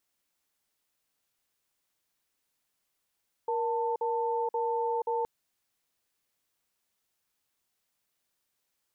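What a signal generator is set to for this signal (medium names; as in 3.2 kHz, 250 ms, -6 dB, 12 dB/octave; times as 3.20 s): cadence 470 Hz, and 891 Hz, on 0.48 s, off 0.05 s, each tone -29.5 dBFS 1.77 s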